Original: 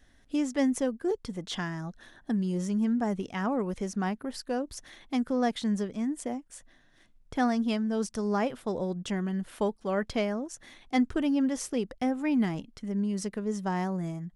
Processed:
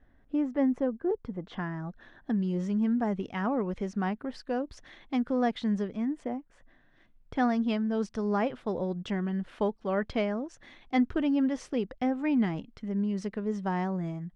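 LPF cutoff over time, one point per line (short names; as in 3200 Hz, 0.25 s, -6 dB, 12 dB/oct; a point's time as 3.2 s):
1.4 s 1400 Hz
2.41 s 3400 Hz
5.84 s 3400 Hz
6.52 s 1800 Hz
7.37 s 3500 Hz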